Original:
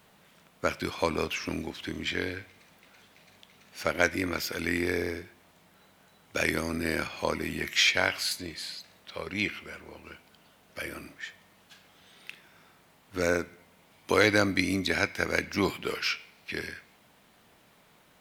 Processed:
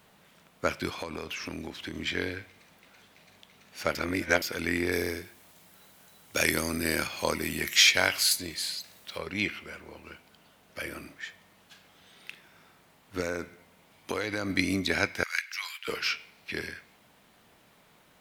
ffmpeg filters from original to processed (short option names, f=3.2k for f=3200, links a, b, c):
-filter_complex "[0:a]asettb=1/sr,asplit=3[a][b][c];[a]atrim=end=0.934[d];[b]atrim=start=0.93:end=1.96,asetpts=PTS-STARTPTS,afade=t=in:d=0.004:c=qsin,afade=t=out:st=1.026:d=0.004:c=qsin,acompressor=threshold=-32dB:ratio=6:attack=3.2:release=140:knee=1:detection=peak[e];[c]atrim=start=1.956[f];[d][e]acrossfade=d=0.004:c1=hsin:c2=qsin[g];[g][f]acrossfade=d=0.004:c1=qsin:c2=hsin,asettb=1/sr,asplit=3[h][i][j];[h]atrim=end=4.924[k];[i]atrim=start=4.92:end=9.18,asetpts=PTS-STARTPTS,afade=t=in:d=0.004:c=qsin,afade=t=out:st=4.256:d=0.004:c=qsin,highshelf=f=5.1k:g=12[l];[j]atrim=start=9.176[m];[k][l]acrossfade=d=0.004:c1=hsin:c2=qsin[n];[n][m]acrossfade=d=0.004:c1=qsin:c2=hsin,asettb=1/sr,asplit=3[o][p][q];[o]atrim=end=13.204[r];[p]atrim=start=13.2:end=14.5,asetpts=PTS-STARTPTS,afade=t=in:d=0.004:c=qsin,afade=t=out:st=1.296:d=0.004:c=qsin,acompressor=threshold=-27dB:ratio=6:attack=3.2:release=140:knee=1:detection=peak[s];[q]atrim=start=14.496[t];[r][s]acrossfade=d=0.004:c1=hsin:c2=qsin[u];[u][t]acrossfade=d=0.004:c1=qsin:c2=hsin,asettb=1/sr,asplit=3[v][w][x];[v]atrim=end=15.234[y];[w]atrim=start=15.23:end=15.88,asetpts=PTS-STARTPTS,afade=t=in:d=0.004:c=qsin,afade=t=out:st=0.646:d=0.004:c=qsin,highpass=f=1.4k:w=0.5412,highpass=f=1.4k:w=1.3066[z];[x]atrim=start=15.876[aa];[y][z]acrossfade=d=0.004:c1=hsin:c2=qsin[ab];[ab][aa]acrossfade=d=0.004:c1=qsin:c2=hsin,asplit=3[ac][ad][ae];[ac]atrim=end=3.952[af];[ad]atrim=start=3.948:end=4.422,asetpts=PTS-STARTPTS,areverse[ag];[ae]atrim=start=4.418[ah];[af][ag]acrossfade=d=0.004:c1=hsin:c2=hsin[ai];[ai][ah]acrossfade=d=0.004:c1=hsin:c2=hsin"